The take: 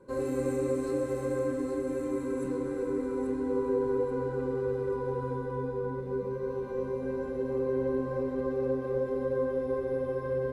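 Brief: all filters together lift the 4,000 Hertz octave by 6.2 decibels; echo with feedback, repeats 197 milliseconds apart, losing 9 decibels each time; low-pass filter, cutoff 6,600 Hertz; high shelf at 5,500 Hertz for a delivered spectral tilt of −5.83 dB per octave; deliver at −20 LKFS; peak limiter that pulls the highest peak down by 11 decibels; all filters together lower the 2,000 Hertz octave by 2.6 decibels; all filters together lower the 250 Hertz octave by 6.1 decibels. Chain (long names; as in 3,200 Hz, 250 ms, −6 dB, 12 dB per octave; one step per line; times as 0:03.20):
low-pass filter 6,600 Hz
parametric band 250 Hz −7.5 dB
parametric band 2,000 Hz −5.5 dB
parametric band 4,000 Hz +6.5 dB
high-shelf EQ 5,500 Hz +6 dB
brickwall limiter −31.5 dBFS
repeating echo 197 ms, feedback 35%, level −9 dB
level +19 dB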